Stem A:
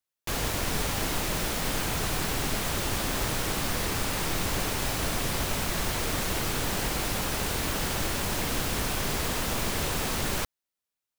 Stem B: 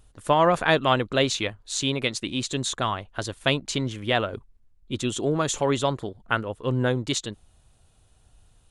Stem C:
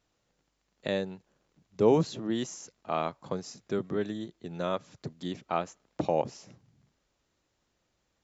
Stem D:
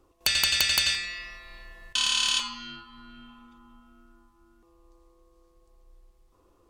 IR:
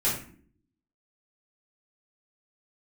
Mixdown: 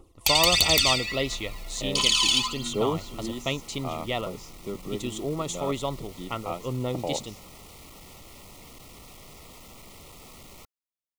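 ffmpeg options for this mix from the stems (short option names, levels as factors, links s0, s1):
-filter_complex "[0:a]asoftclip=type=tanh:threshold=0.0237,adelay=200,volume=0.251[s0];[1:a]volume=0.501[s1];[2:a]adelay=950,volume=0.631[s2];[3:a]aphaser=in_gain=1:out_gain=1:delay=1.5:decay=0.73:speed=1.5:type=triangular,volume=1[s3];[s0][s1][s2][s3]amix=inputs=4:normalize=0,asuperstop=centerf=1600:order=8:qfactor=3.3"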